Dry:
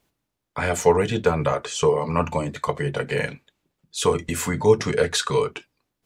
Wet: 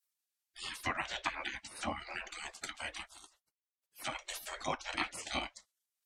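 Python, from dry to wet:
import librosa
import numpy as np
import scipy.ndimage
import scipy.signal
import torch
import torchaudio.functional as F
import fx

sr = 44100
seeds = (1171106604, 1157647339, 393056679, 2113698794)

y = fx.env_lowpass_down(x, sr, base_hz=3000.0, full_db=-15.5)
y = fx.pre_emphasis(y, sr, coefficient=0.9, at=(3.05, 3.98), fade=0.02)
y = fx.spec_gate(y, sr, threshold_db=-25, keep='weak')
y = y * librosa.db_to_amplitude(2.0)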